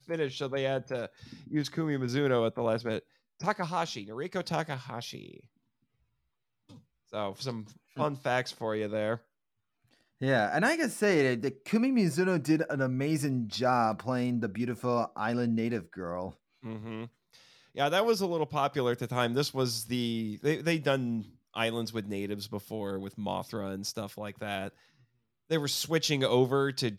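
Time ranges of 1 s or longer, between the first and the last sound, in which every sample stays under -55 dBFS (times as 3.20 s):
5.46–6.69 s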